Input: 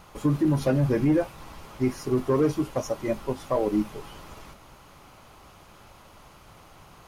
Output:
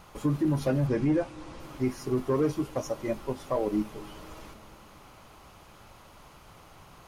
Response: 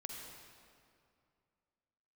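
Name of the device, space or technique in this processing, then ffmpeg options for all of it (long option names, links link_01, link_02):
ducked reverb: -filter_complex "[0:a]asettb=1/sr,asplit=3[link_01][link_02][link_03];[link_01]atrim=end=0.874[link_04];[link_02]atrim=start=0.87:end=1.6,asetpts=PTS-STARTPTS,afade=type=in:duration=0.004:curve=qsin,afade=type=out:start_time=0.726:duration=0.004:curve=qsin,lowpass=frequency=9200:width=0.5412,lowpass=frequency=9200:width=1.3066[link_05];[link_03]atrim=start=1.596[link_06];[link_04][link_05]acrossfade=duration=0.004:curve1=hsin:curve2=qsin[link_07];[link_07][link_06]acrossfade=duration=0.004:curve1=qsin:curve2=hsin,asplit=3[link_08][link_09][link_10];[1:a]atrim=start_sample=2205[link_11];[link_09][link_11]afir=irnorm=-1:irlink=0[link_12];[link_10]apad=whole_len=312152[link_13];[link_12][link_13]sidechaincompress=threshold=-35dB:ratio=8:attack=16:release=468,volume=-5dB[link_14];[link_08][link_14]amix=inputs=2:normalize=0,volume=-4dB"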